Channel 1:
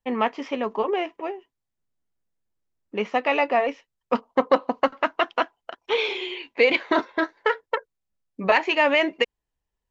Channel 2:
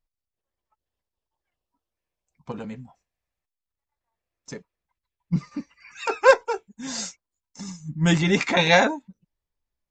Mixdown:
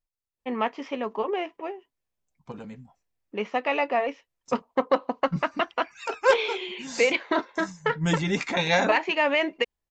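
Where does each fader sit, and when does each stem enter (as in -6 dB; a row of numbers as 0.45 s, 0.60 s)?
-3.5 dB, -5.5 dB; 0.40 s, 0.00 s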